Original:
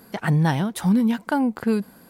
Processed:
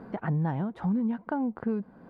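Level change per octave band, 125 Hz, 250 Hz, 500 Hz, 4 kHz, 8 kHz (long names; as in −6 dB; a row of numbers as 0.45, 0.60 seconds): −8.0 dB, −8.0 dB, −7.5 dB, below −20 dB, below −35 dB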